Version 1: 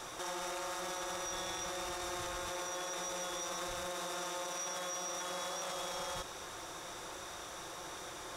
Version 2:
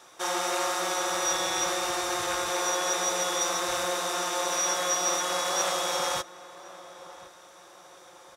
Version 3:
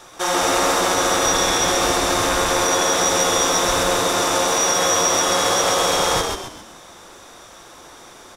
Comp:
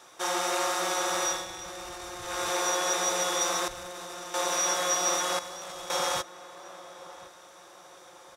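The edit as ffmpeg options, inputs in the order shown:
-filter_complex "[0:a]asplit=3[a][b][c];[1:a]asplit=4[d][e][f][g];[d]atrim=end=1.47[h];[a]atrim=start=1.23:end=2.46[i];[e]atrim=start=2.22:end=3.682[j];[b]atrim=start=3.678:end=4.342[k];[f]atrim=start=4.338:end=5.392[l];[c]atrim=start=5.388:end=5.902[m];[g]atrim=start=5.898[n];[h][i]acrossfade=d=0.24:c1=tri:c2=tri[o];[o][j]acrossfade=d=0.24:c1=tri:c2=tri[p];[p][k]acrossfade=d=0.004:c1=hsin:c2=hsin[q];[q][l]acrossfade=d=0.004:c1=hsin:c2=hsin[r];[r][m]acrossfade=d=0.004:c1=hsin:c2=hsin[s];[s][n]acrossfade=d=0.004:c1=hsin:c2=hsin"

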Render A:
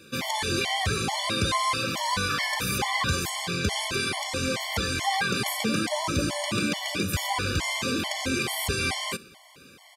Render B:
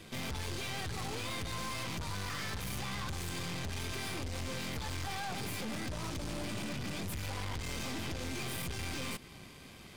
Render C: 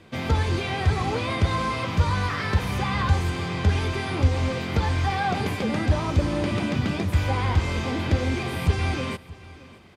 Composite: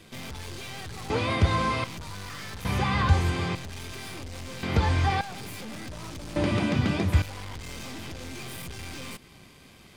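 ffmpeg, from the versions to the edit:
-filter_complex "[2:a]asplit=4[a][b][c][d];[1:a]asplit=5[e][f][g][h][i];[e]atrim=end=1.102[j];[a]atrim=start=1.098:end=1.842[k];[f]atrim=start=1.838:end=2.652[l];[b]atrim=start=2.648:end=3.552[m];[g]atrim=start=3.548:end=4.632[n];[c]atrim=start=4.628:end=5.212[o];[h]atrim=start=5.208:end=6.362[p];[d]atrim=start=6.358:end=7.222[q];[i]atrim=start=7.218[r];[j][k]acrossfade=d=0.004:c1=hsin:c2=hsin[s];[s][l]acrossfade=d=0.004:c1=hsin:c2=hsin[t];[t][m]acrossfade=d=0.004:c1=hsin:c2=hsin[u];[u][n]acrossfade=d=0.004:c1=hsin:c2=hsin[v];[v][o]acrossfade=d=0.004:c1=hsin:c2=hsin[w];[w][p]acrossfade=d=0.004:c1=hsin:c2=hsin[x];[x][q]acrossfade=d=0.004:c1=hsin:c2=hsin[y];[y][r]acrossfade=d=0.004:c1=hsin:c2=hsin"

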